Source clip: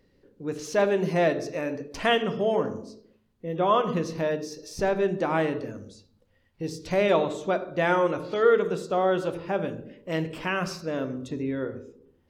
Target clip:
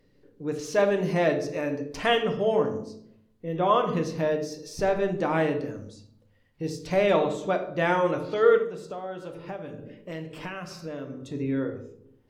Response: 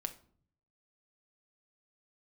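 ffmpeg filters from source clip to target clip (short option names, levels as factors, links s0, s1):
-filter_complex "[0:a]asplit=3[s0][s1][s2];[s0]afade=t=out:st=8.57:d=0.02[s3];[s1]acompressor=threshold=0.02:ratio=6,afade=t=in:st=8.57:d=0.02,afade=t=out:st=11.33:d=0.02[s4];[s2]afade=t=in:st=11.33:d=0.02[s5];[s3][s4][s5]amix=inputs=3:normalize=0[s6];[1:a]atrim=start_sample=2205,asetrate=37485,aresample=44100[s7];[s6][s7]afir=irnorm=-1:irlink=0"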